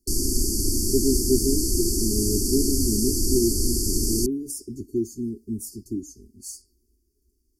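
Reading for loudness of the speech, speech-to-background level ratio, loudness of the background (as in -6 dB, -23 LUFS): -28.0 LUFS, -4.0 dB, -24.0 LUFS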